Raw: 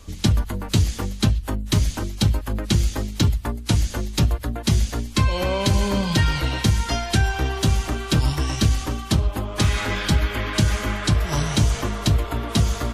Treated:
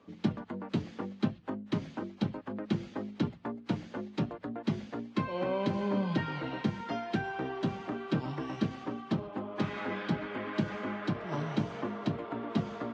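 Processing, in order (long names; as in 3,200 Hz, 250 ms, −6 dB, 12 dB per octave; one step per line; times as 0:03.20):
high-pass filter 170 Hz 24 dB per octave
head-to-tape spacing loss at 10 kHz 41 dB
level −5 dB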